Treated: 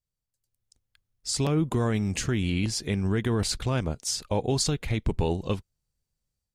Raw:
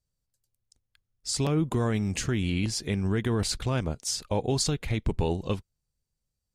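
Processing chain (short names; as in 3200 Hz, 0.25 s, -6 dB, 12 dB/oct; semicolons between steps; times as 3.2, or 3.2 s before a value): AGC gain up to 8 dB; gain -7 dB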